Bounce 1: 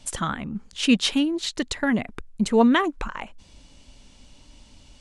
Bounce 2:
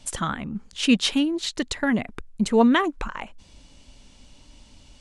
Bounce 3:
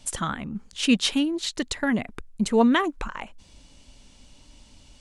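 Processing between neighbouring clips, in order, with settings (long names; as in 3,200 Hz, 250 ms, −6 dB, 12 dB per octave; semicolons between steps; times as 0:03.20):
no processing that can be heard
high-shelf EQ 8,500 Hz +5 dB; level −1.5 dB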